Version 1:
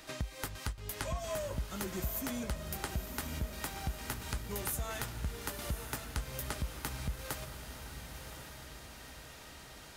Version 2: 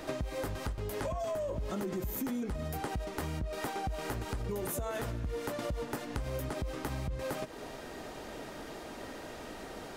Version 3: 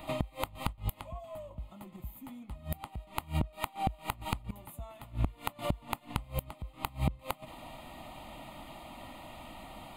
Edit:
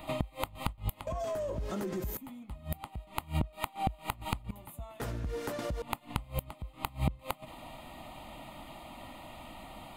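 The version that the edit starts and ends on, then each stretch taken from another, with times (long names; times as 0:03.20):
3
0:01.07–0:02.17: punch in from 2
0:05.00–0:05.82: punch in from 2
not used: 1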